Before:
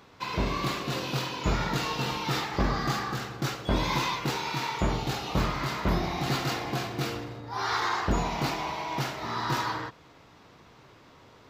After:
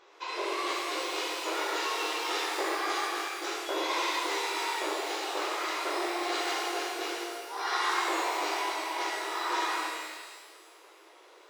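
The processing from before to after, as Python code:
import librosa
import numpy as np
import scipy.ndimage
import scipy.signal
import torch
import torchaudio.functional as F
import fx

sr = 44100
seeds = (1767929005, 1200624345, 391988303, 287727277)

y = fx.brickwall_bandpass(x, sr, low_hz=310.0, high_hz=7800.0)
y = fx.notch(y, sr, hz=4400.0, q=19.0)
y = fx.rev_shimmer(y, sr, seeds[0], rt60_s=1.5, semitones=12, shimmer_db=-8, drr_db=-3.0)
y = y * 10.0 ** (-5.0 / 20.0)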